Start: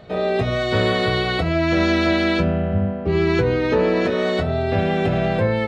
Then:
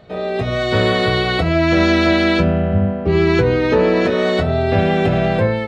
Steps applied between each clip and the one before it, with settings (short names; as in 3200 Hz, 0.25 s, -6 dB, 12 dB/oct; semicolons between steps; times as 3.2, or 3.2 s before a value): AGC gain up to 9.5 dB; gain -2 dB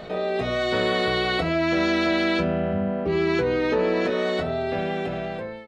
ending faded out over 1.89 s; bell 96 Hz -14.5 dB 1 oct; fast leveller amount 50%; gain -8 dB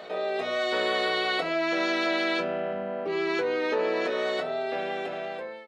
HPF 410 Hz 12 dB/oct; gain -2 dB